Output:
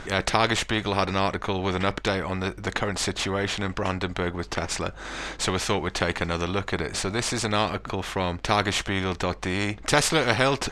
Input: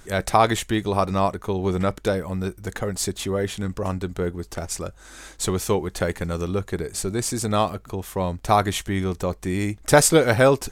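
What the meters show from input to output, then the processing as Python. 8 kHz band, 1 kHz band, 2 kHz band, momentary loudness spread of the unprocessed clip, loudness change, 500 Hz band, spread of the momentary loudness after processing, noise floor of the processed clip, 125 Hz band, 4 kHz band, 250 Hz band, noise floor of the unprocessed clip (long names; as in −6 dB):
−4.5 dB, −2.5 dB, +2.0 dB, 12 LU, −2.5 dB, −5.0 dB, 7 LU, −43 dBFS, −4.0 dB, +4.0 dB, −3.5 dB, −48 dBFS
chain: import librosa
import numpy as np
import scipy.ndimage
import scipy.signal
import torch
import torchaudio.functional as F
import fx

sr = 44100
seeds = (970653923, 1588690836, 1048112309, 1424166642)

y = scipy.signal.sosfilt(scipy.signal.butter(2, 3500.0, 'lowpass', fs=sr, output='sos'), x)
y = fx.spectral_comp(y, sr, ratio=2.0)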